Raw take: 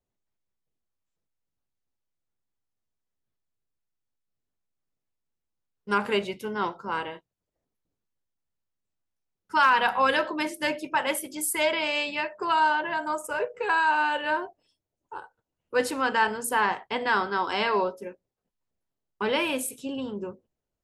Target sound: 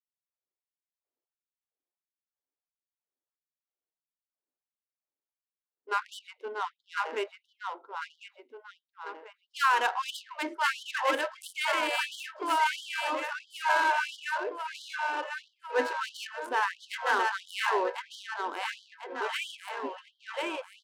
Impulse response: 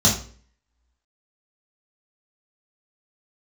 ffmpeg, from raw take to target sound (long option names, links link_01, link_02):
-af "aecho=1:1:1046|2092|3138|4184|5230|6276|7322:0.708|0.361|0.184|0.0939|0.0479|0.0244|0.0125,adynamicsmooth=sensitivity=3.5:basefreq=1400,afftfilt=real='re*gte(b*sr/1024,240*pow(3000/240,0.5+0.5*sin(2*PI*1.5*pts/sr)))':imag='im*gte(b*sr/1024,240*pow(3000/240,0.5+0.5*sin(2*PI*1.5*pts/sr)))':win_size=1024:overlap=0.75,volume=-3.5dB"